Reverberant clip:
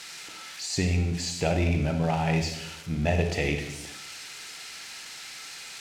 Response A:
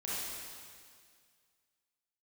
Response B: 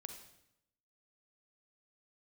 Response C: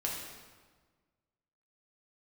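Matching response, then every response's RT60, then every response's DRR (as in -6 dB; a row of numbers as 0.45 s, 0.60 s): B; 2.0 s, 0.80 s, 1.5 s; -9.0 dB, 5.5 dB, -3.5 dB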